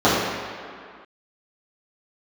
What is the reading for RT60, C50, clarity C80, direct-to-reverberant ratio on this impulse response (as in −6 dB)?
non-exponential decay, −1.0 dB, 1.0 dB, −12.5 dB